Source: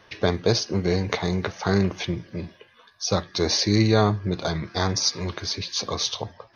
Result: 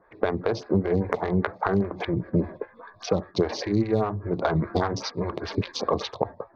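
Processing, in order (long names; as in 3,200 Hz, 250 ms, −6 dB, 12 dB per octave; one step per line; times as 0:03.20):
adaptive Wiener filter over 15 samples
camcorder AGC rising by 16 dB per second
low-pass filter 2,600 Hz 12 dB per octave
noise gate −35 dBFS, range −8 dB
in parallel at −5 dB: hard clipping −11 dBFS, distortion −20 dB
on the sum: downward compressor 3 to 1, threshold −20 dBFS, peak gain reduction 8 dB
phaser with staggered stages 5 Hz
level +2 dB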